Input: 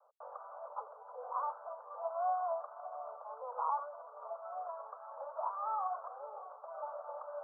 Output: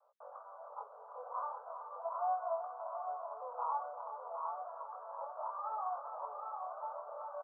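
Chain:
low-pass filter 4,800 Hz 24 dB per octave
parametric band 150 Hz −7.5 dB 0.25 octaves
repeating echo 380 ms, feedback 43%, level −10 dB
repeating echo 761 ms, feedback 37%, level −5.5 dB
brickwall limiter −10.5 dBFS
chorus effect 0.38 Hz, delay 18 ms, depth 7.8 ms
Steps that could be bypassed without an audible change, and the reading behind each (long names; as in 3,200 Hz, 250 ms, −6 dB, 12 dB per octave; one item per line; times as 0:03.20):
low-pass filter 4,800 Hz: nothing at its input above 1,500 Hz
parametric band 150 Hz: nothing at its input below 430 Hz
brickwall limiter −10.5 dBFS: peak of its input −21.5 dBFS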